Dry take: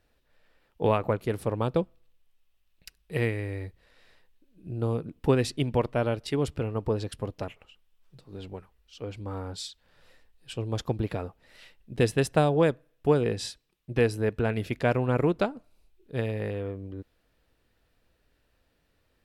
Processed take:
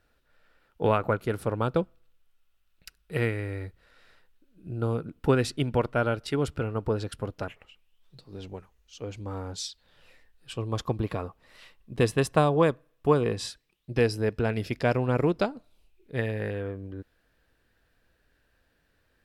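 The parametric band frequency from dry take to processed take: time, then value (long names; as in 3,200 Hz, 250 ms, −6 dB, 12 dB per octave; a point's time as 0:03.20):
parametric band +10.5 dB 0.25 octaves
0:07.41 1,400 Hz
0:08.50 6,500 Hz
0:09.57 6,500 Hz
0:10.55 1,100 Hz
0:13.44 1,100 Hz
0:13.95 5,100 Hz
0:15.41 5,100 Hz
0:16.33 1,600 Hz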